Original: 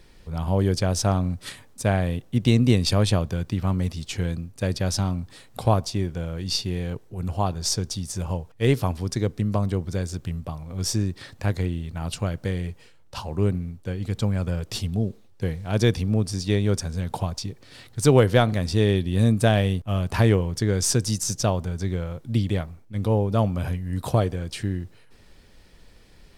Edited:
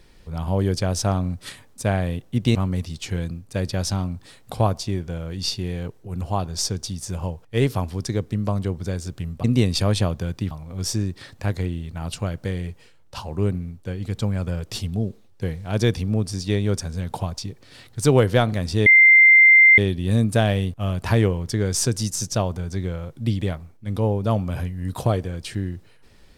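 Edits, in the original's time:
2.55–3.62 s: move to 10.51 s
18.86 s: add tone 2.09 kHz -8 dBFS 0.92 s

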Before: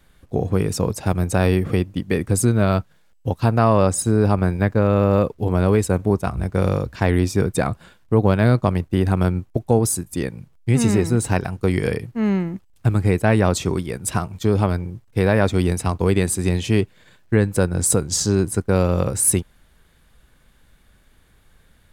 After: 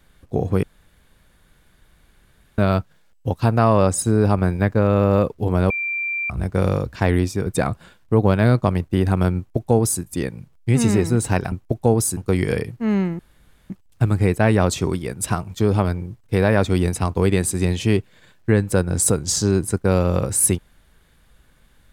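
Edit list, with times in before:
0.63–2.58 s: room tone
5.70–6.30 s: bleep 2.36 kHz -21.5 dBFS
7.15–7.46 s: fade out, to -6.5 dB
9.37–10.02 s: copy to 11.52 s
12.54 s: insert room tone 0.51 s

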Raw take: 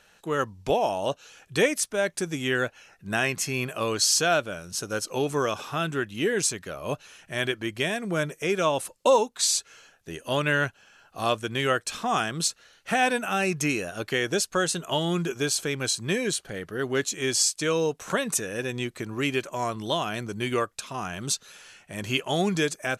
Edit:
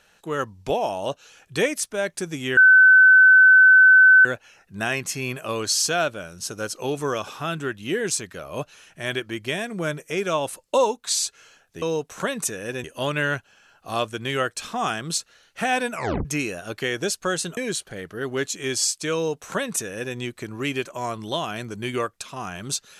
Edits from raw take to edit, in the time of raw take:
2.57 s: add tone 1.52 kHz -8.5 dBFS 1.68 s
13.23 s: tape stop 0.32 s
14.87–16.15 s: delete
17.72–18.74 s: copy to 10.14 s

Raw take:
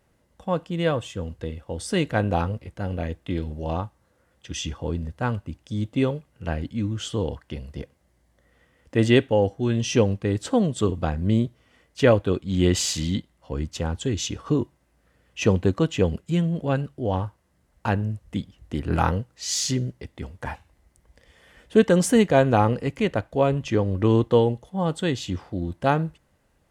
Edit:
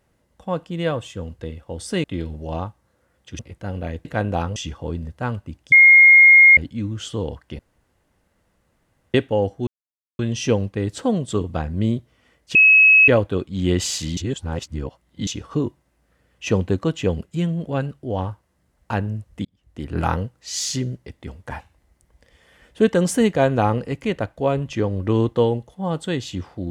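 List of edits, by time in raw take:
2.04–2.55 s: swap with 3.21–4.56 s
5.72–6.57 s: bleep 2.14 kHz -6 dBFS
7.59–9.14 s: room tone
9.67 s: insert silence 0.52 s
12.03 s: add tone 2.57 kHz -8 dBFS 0.53 s
13.12–14.22 s: reverse
18.40–18.93 s: fade in

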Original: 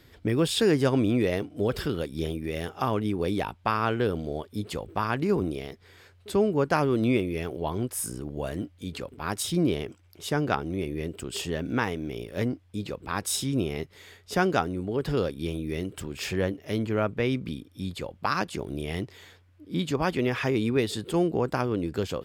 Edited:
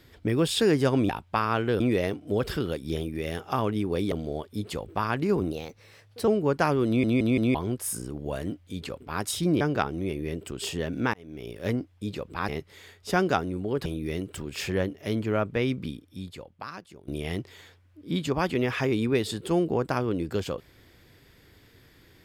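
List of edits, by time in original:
3.41–4.12 s: move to 1.09 s
5.52–6.39 s: speed 115%
6.98 s: stutter in place 0.17 s, 4 plays
9.72–10.33 s: delete
11.86–12.31 s: fade in linear
13.21–13.72 s: delete
15.09–15.49 s: delete
17.51–18.71 s: fade out quadratic, to -16.5 dB

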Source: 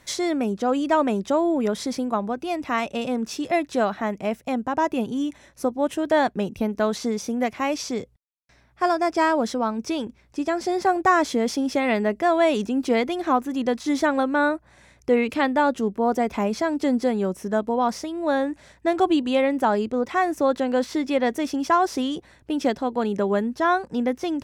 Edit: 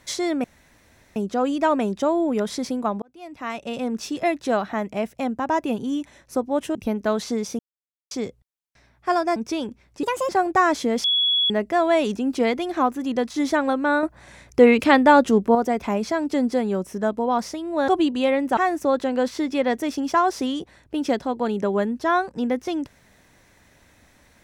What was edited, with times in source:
0.44 s: insert room tone 0.72 s
2.30–3.23 s: fade in
6.03–6.49 s: delete
7.33–7.85 s: mute
9.10–9.74 s: delete
10.41–10.79 s: speed 146%
11.54–12.00 s: bleep 3.37 kHz -17 dBFS
14.53–16.05 s: gain +6.5 dB
18.38–18.99 s: delete
19.68–20.13 s: delete

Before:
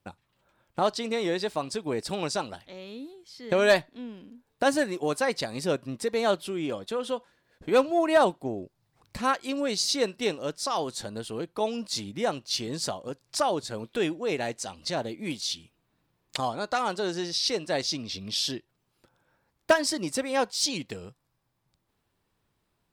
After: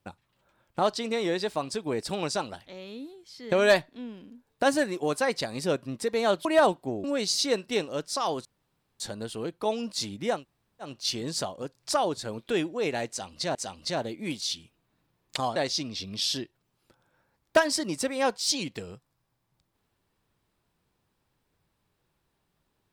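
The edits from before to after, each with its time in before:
6.45–8.03 s: delete
8.62–9.54 s: delete
10.95 s: insert room tone 0.55 s
12.33 s: insert room tone 0.49 s, crossfade 0.16 s
14.55–15.01 s: loop, 2 plays
16.56–17.70 s: delete

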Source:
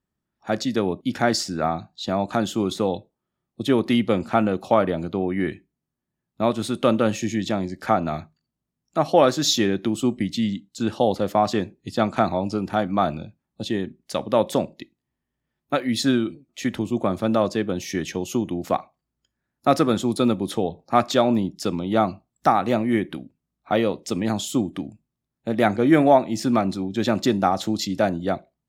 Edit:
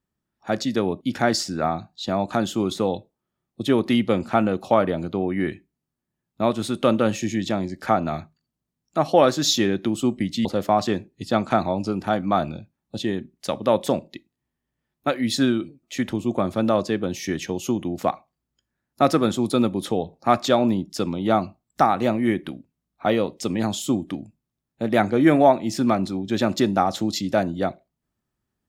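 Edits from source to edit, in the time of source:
10.45–11.11 s: delete

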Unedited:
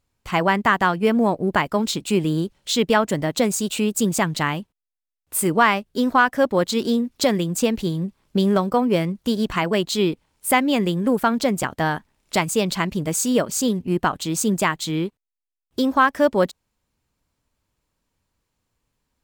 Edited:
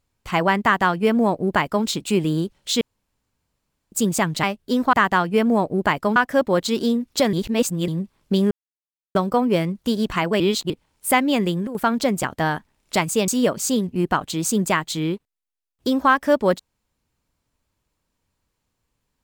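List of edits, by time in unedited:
0.62–1.85 s: copy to 6.20 s
2.81–3.92 s: room tone
4.43–5.70 s: delete
7.37–7.92 s: reverse
8.55 s: insert silence 0.64 s
9.80–10.10 s: reverse
10.75–11.47 s: dip -13.5 dB, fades 0.32 s logarithmic
12.68–13.20 s: delete

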